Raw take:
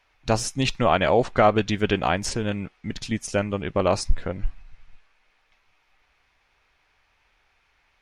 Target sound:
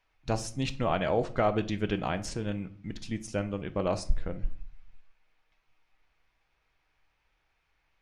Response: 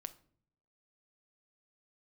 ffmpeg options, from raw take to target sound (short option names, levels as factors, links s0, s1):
-filter_complex "[0:a]lowshelf=f=440:g=5[s0];[1:a]atrim=start_sample=2205,afade=t=out:st=0.33:d=0.01,atrim=end_sample=14994[s1];[s0][s1]afir=irnorm=-1:irlink=0,volume=0.473"